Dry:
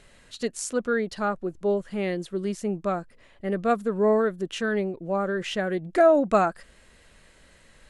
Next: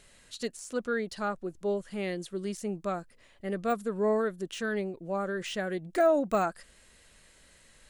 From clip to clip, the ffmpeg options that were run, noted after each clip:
ffmpeg -i in.wav -af "deesser=0.95,highshelf=frequency=3900:gain=10,volume=-6dB" out.wav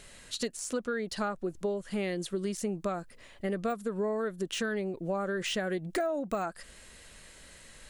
ffmpeg -i in.wav -af "acompressor=threshold=-35dB:ratio=10,volume=6.5dB" out.wav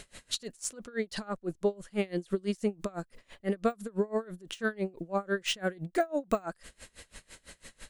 ffmpeg -i in.wav -af "aeval=exprs='val(0)*pow(10,-27*(0.5-0.5*cos(2*PI*6*n/s))/20)':channel_layout=same,volume=6dB" out.wav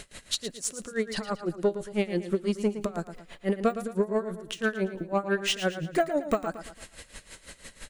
ffmpeg -i in.wav -filter_complex "[0:a]asoftclip=type=tanh:threshold=-19dB,asplit=2[link_01][link_02];[link_02]aecho=0:1:113|226|339|452:0.282|0.121|0.0521|0.0224[link_03];[link_01][link_03]amix=inputs=2:normalize=0,volume=4.5dB" out.wav

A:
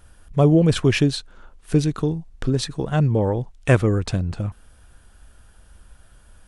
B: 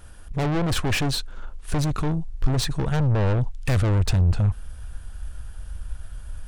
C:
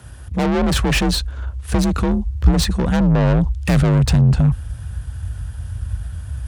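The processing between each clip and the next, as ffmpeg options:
ffmpeg -i in.wav -af "aeval=exprs='(tanh(22.4*val(0)+0.35)-tanh(0.35))/22.4':channel_layout=same,asubboost=boost=3.5:cutoff=130,volume=5.5dB" out.wav
ffmpeg -i in.wav -af "afreqshift=45,volume=5.5dB" out.wav

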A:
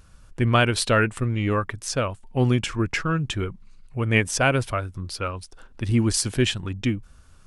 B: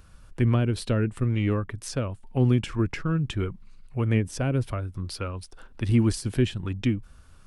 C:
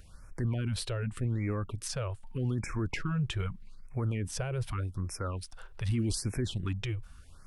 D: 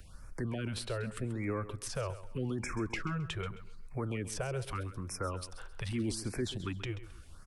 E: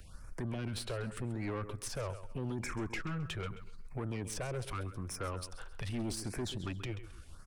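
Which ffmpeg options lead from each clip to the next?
ffmpeg -i in.wav -filter_complex "[0:a]equalizer=frequency=6700:width_type=o:width=0.73:gain=-4,acrossover=split=410[link_01][link_02];[link_02]acompressor=threshold=-33dB:ratio=12[link_03];[link_01][link_03]amix=inputs=2:normalize=0" out.wav
ffmpeg -i in.wav -af "equalizer=frequency=250:width=0.41:gain=-3,alimiter=limit=-23dB:level=0:latency=1:release=26,afftfilt=real='re*(1-between(b*sr/1024,220*pow(3700/220,0.5+0.5*sin(2*PI*0.83*pts/sr))/1.41,220*pow(3700/220,0.5+0.5*sin(2*PI*0.83*pts/sr))*1.41))':imag='im*(1-between(b*sr/1024,220*pow(3700/220,0.5+0.5*sin(2*PI*0.83*pts/sr))/1.41,220*pow(3700/220,0.5+0.5*sin(2*PI*0.83*pts/sr))*1.41))':win_size=1024:overlap=0.75" out.wav
ffmpeg -i in.wav -filter_complex "[0:a]acrossover=split=230|410|1900[link_01][link_02][link_03][link_04];[link_01]acompressor=threshold=-40dB:ratio=6[link_05];[link_04]alimiter=level_in=7dB:limit=-24dB:level=0:latency=1:release=285,volume=-7dB[link_06];[link_05][link_02][link_03][link_06]amix=inputs=4:normalize=0,aecho=1:1:133|266|399:0.2|0.0559|0.0156,volume=1dB" out.wav
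ffmpeg -i in.wav -af "aeval=exprs='(tanh(50.1*val(0)+0.4)-tanh(0.4))/50.1':channel_layout=same,volume=1.5dB" out.wav

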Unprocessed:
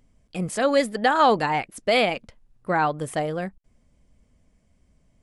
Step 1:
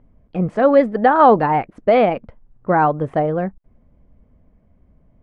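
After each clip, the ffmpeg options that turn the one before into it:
ffmpeg -i in.wav -af "lowpass=1200,volume=8dB" out.wav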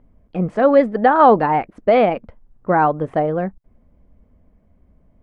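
ffmpeg -i in.wav -af "equalizer=frequency=130:width_type=o:width=0.27:gain=-8.5" out.wav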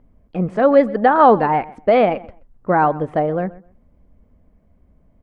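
ffmpeg -i in.wav -filter_complex "[0:a]asplit=2[link_01][link_02];[link_02]adelay=128,lowpass=frequency=3200:poles=1,volume=-19.5dB,asplit=2[link_03][link_04];[link_04]adelay=128,lowpass=frequency=3200:poles=1,volume=0.2[link_05];[link_01][link_03][link_05]amix=inputs=3:normalize=0" out.wav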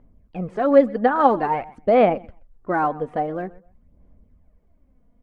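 ffmpeg -i in.wav -af "aphaser=in_gain=1:out_gain=1:delay=4.2:decay=0.5:speed=0.49:type=sinusoidal,volume=-6.5dB" out.wav

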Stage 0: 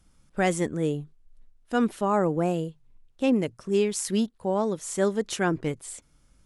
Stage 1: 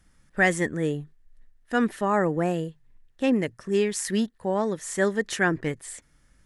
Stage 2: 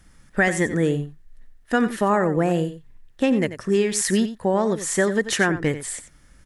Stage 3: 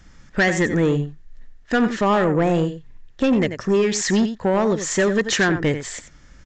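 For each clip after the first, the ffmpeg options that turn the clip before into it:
ffmpeg -i in.wav -af "equalizer=frequency=1800:width=4.4:gain=14" out.wav
ffmpeg -i in.wav -af "acompressor=threshold=-24dB:ratio=6,aecho=1:1:90:0.237,volume=8dB" out.wav
ffmpeg -i in.wav -af "asoftclip=type=tanh:threshold=-17dB,aresample=16000,aresample=44100,volume=5dB" out.wav

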